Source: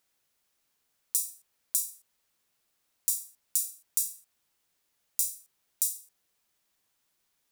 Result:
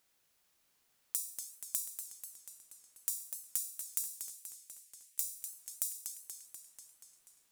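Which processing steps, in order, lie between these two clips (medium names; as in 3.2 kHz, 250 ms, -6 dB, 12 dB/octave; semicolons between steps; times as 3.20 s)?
compression, threshold -33 dBFS, peak gain reduction 10.5 dB; 4.10–5.24 s: steep high-pass 1.8 kHz; modulated delay 242 ms, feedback 69%, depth 175 cents, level -7 dB; trim +1 dB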